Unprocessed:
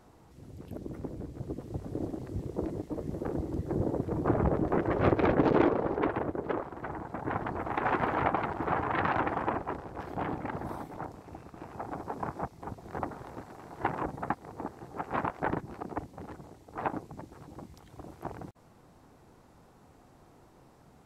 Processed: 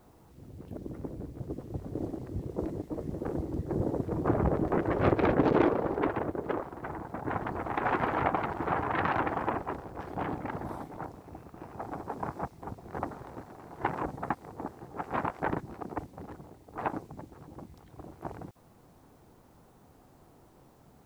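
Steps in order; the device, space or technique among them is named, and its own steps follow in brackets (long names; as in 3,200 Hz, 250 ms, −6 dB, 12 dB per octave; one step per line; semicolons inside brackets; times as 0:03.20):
plain cassette with noise reduction switched in (one half of a high-frequency compander decoder only; tape wow and flutter 29 cents; white noise bed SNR 39 dB)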